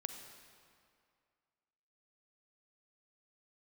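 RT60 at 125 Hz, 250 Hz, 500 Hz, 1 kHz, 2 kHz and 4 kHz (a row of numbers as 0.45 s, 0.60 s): 2.1 s, 2.1 s, 2.2 s, 2.3 s, 2.0 s, 1.7 s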